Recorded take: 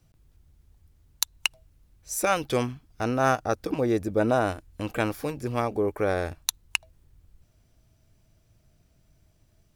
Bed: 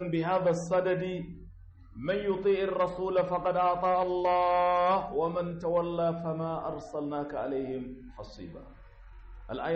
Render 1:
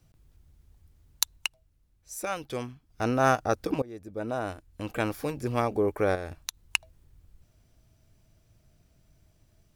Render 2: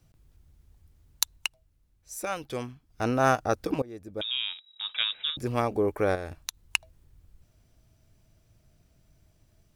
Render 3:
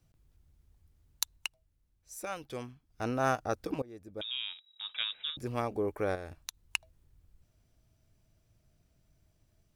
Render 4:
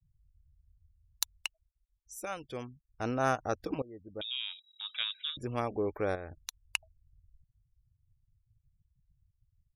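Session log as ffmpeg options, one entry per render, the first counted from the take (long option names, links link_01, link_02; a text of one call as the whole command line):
ffmpeg -i in.wav -filter_complex "[0:a]asettb=1/sr,asplit=3[link_01][link_02][link_03];[link_01]atrim=end=6.154[link_04];[link_02]atrim=start=6.15:end=6.61,asetpts=PTS-STARTPTS,afade=type=in:duration=0.004:curve=qsin,afade=type=out:start_time=0.456:duration=0.004:curve=qsin,acompressor=threshold=-34dB:ratio=2.5:attack=3.2:release=140:knee=1:detection=peak[link_05];[link_03]atrim=start=6.606[link_06];[link_04][link_05]acrossfade=duration=0.004:curve1=hsin:curve2=qsin[link_07];[link_07][link_06]acrossfade=duration=0.004:curve1=qsin:curve2=hsin,asplit=4[link_08][link_09][link_10][link_11];[link_08]atrim=end=1.51,asetpts=PTS-STARTPTS,afade=type=out:start_time=1.31:duration=0.2:silence=0.375837[link_12];[link_09]atrim=start=1.51:end=2.85,asetpts=PTS-STARTPTS,volume=-8.5dB[link_13];[link_10]atrim=start=2.85:end=3.82,asetpts=PTS-STARTPTS,afade=type=in:duration=0.2:silence=0.375837,afade=type=out:start_time=0.966:duration=0.004:curve=hsin:silence=0.0668344[link_14];[link_11]atrim=start=3.82,asetpts=PTS-STARTPTS,afade=type=in:duration=1.62:silence=0.0668344[link_15];[link_12][link_13][link_14][link_15]concat=n=4:v=0:a=1" out.wav
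ffmpeg -i in.wav -filter_complex "[0:a]asettb=1/sr,asplit=3[link_01][link_02][link_03];[link_01]atrim=end=4.214[link_04];[link_02]atrim=start=4.21:end=5.37,asetpts=PTS-STARTPTS,afade=type=in:duration=0.004:curve=qsin,afade=type=out:start_time=1.156:duration=0.004:curve=qsin,lowpass=frequency=3300:width_type=q:width=0.5098,lowpass=frequency=3300:width_type=q:width=0.6013,lowpass=frequency=3300:width_type=q:width=0.9,lowpass=frequency=3300:width_type=q:width=2.563,afreqshift=-3900[link_05];[link_03]atrim=start=5.366[link_06];[link_04][link_05]acrossfade=duration=0.004:curve1=hsin:curve2=qsin[link_07];[link_07][link_06]acrossfade=duration=0.004:curve1=qsin:curve2=hsin" out.wav
ffmpeg -i in.wav -af "volume=-6.5dB" out.wav
ffmpeg -i in.wav -af "afftfilt=real='re*gte(hypot(re,im),0.00251)':imag='im*gte(hypot(re,im),0.00251)':win_size=1024:overlap=0.75" out.wav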